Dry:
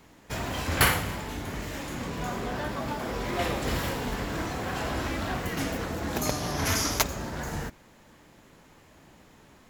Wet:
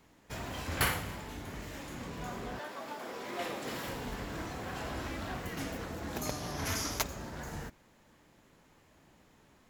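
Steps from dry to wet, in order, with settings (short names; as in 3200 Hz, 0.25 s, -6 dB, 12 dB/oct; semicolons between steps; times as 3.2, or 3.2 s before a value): 2.58–3.87 HPF 430 Hz -> 170 Hz 12 dB/oct; gain -8 dB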